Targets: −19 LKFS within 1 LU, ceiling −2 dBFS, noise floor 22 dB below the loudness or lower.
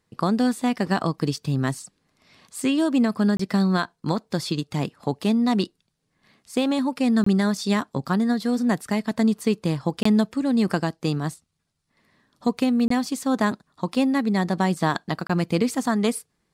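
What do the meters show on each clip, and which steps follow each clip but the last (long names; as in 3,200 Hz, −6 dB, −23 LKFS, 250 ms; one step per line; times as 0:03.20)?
number of dropouts 5; longest dropout 24 ms; integrated loudness −23.5 LKFS; sample peak −8.0 dBFS; target loudness −19.0 LKFS
→ repair the gap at 0:03.37/0:07.24/0:10.03/0:12.88/0:15.27, 24 ms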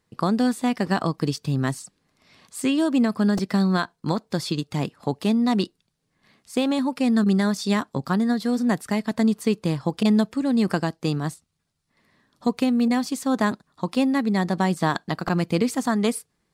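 number of dropouts 0; integrated loudness −23.5 LKFS; sample peak −8.0 dBFS; target loudness −19.0 LKFS
→ level +4.5 dB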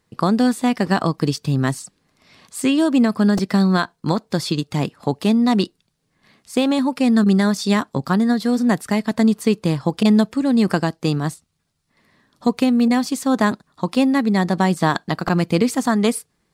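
integrated loudness −19.0 LKFS; sample peak −3.5 dBFS; background noise floor −70 dBFS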